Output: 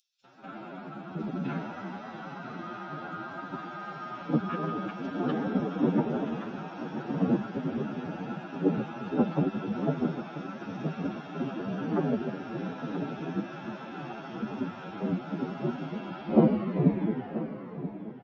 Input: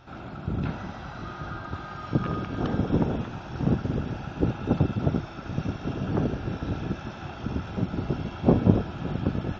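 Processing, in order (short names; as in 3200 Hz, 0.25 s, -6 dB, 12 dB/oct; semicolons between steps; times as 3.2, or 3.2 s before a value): tape stop at the end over 1.19 s; HPF 170 Hz 24 dB/oct; gate with hold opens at -36 dBFS; upward compressor, threshold -42 dBFS; bands offset in time highs, lows 0.13 s, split 4800 Hz; time stretch by phase-locked vocoder 1.9×; high shelf 5100 Hz -8 dB; on a send: feedback echo 0.982 s, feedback 31%, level -13 dB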